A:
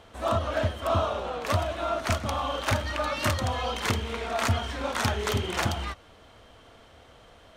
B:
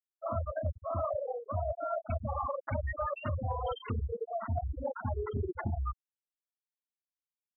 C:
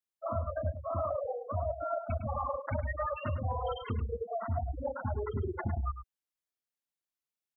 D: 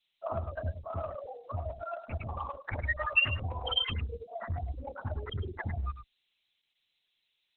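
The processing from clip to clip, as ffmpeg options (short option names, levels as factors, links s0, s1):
-af "afftfilt=real='re*gte(hypot(re,im),0.141)':imag='im*gte(hypot(re,im),0.141)':win_size=1024:overlap=0.75,areverse,acompressor=threshold=0.02:ratio=16,areverse,volume=1.58"
-filter_complex "[0:a]asplit=2[s0][s1];[s1]adelay=105,volume=0.316,highshelf=f=4000:g=-2.36[s2];[s0][s2]amix=inputs=2:normalize=0"
-af "adynamicequalizer=threshold=0.00355:dfrequency=410:dqfactor=0.82:tfrequency=410:tqfactor=0.82:attack=5:release=100:ratio=0.375:range=4:mode=cutabove:tftype=bell,aexciter=amount=11.9:drive=5.3:freq=2100" -ar 48000 -c:a libopus -b:a 6k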